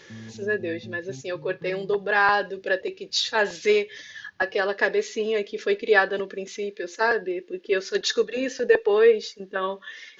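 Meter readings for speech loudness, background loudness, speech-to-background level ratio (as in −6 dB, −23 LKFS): −24.5 LKFS, −44.0 LKFS, 19.5 dB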